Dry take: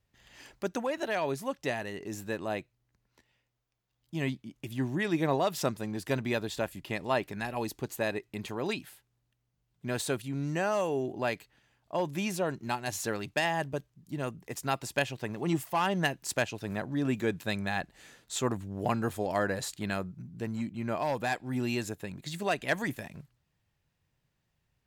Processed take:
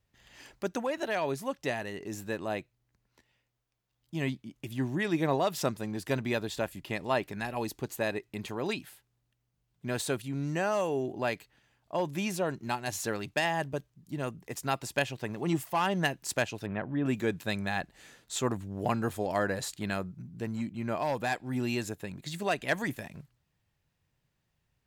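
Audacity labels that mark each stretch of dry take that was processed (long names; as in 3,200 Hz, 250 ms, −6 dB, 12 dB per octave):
16.660000	17.060000	Butterworth low-pass 3,200 Hz 48 dB per octave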